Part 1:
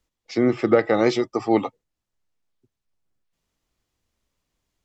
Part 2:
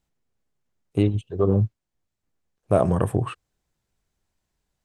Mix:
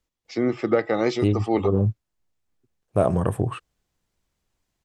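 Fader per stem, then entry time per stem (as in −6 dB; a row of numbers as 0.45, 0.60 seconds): −3.5, −1.0 decibels; 0.00, 0.25 seconds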